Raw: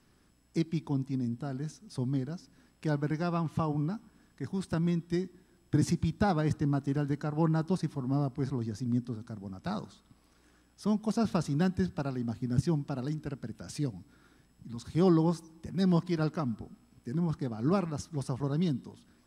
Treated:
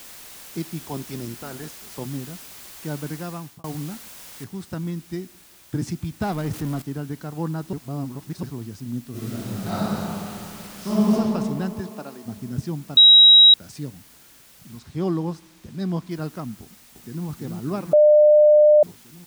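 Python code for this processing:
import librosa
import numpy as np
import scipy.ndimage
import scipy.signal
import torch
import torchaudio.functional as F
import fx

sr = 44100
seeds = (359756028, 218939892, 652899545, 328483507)

y = fx.spec_clip(x, sr, under_db=17, at=(0.87, 2.06), fade=0.02)
y = fx.noise_floor_step(y, sr, seeds[0], at_s=4.44, before_db=-42, after_db=-51, tilt_db=0.0)
y = fx.zero_step(y, sr, step_db=-32.5, at=(6.21, 6.82))
y = fx.reverb_throw(y, sr, start_s=9.1, length_s=2.01, rt60_s=2.9, drr_db=-11.5)
y = fx.highpass(y, sr, hz=fx.line((11.8, 180.0), (12.25, 440.0)), slope=12, at=(11.8, 12.25), fade=0.02)
y = fx.high_shelf(y, sr, hz=8200.0, db=-10.0, at=(14.79, 16.11))
y = fx.echo_throw(y, sr, start_s=16.62, length_s=0.64, ms=330, feedback_pct=75, wet_db=-3.5)
y = fx.edit(y, sr, fx.fade_out_span(start_s=3.08, length_s=0.56, curve='qsin'),
    fx.reverse_span(start_s=7.73, length_s=0.7),
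    fx.bleep(start_s=12.97, length_s=0.57, hz=3840.0, db=-7.0),
    fx.bleep(start_s=17.93, length_s=0.9, hz=601.0, db=-9.5), tone=tone)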